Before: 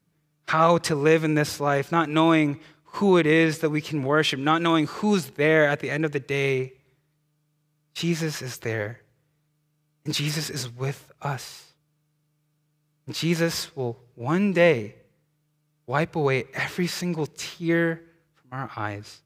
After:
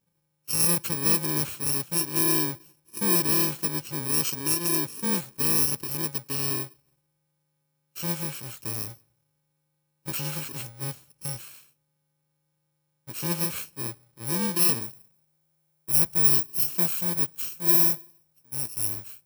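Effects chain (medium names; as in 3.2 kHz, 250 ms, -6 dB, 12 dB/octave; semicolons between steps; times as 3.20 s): bit-reversed sample order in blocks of 64 samples; treble shelf 9.7 kHz +2 dB, from 14.82 s +11.5 dB; trim -5.5 dB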